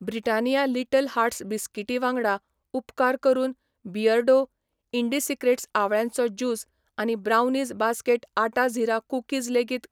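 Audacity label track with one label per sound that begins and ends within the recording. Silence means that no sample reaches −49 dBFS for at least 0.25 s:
2.740000	3.530000	sound
3.850000	4.460000	sound
4.930000	6.640000	sound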